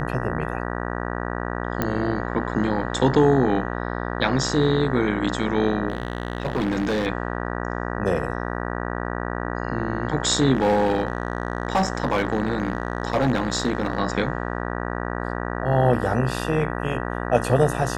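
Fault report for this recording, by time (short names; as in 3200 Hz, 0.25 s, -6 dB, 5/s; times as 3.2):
buzz 60 Hz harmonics 32 -28 dBFS
1.82 pop -9 dBFS
5.88–7.07 clipped -19 dBFS
10.53–13.99 clipped -15 dBFS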